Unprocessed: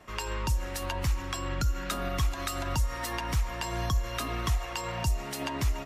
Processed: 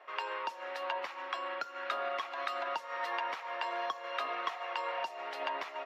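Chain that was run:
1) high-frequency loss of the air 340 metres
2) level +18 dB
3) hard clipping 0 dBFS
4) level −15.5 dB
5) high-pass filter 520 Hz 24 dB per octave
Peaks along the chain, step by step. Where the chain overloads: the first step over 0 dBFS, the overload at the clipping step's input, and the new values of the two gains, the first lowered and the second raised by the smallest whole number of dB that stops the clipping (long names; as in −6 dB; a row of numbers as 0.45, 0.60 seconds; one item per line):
−19.5, −1.5, −1.5, −17.0, −18.5 dBFS
no step passes full scale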